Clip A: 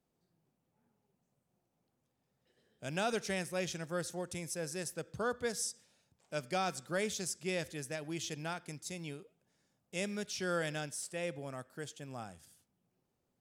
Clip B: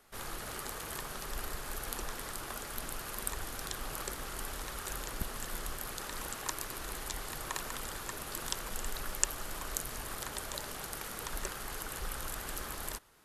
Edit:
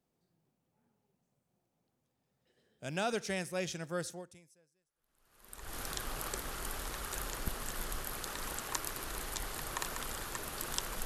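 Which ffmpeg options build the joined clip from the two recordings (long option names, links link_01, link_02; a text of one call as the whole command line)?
ffmpeg -i cue0.wav -i cue1.wav -filter_complex "[0:a]apad=whole_dur=11.05,atrim=end=11.05,atrim=end=5.77,asetpts=PTS-STARTPTS[link_01];[1:a]atrim=start=1.83:end=8.79,asetpts=PTS-STARTPTS[link_02];[link_01][link_02]acrossfade=duration=1.68:curve1=exp:curve2=exp" out.wav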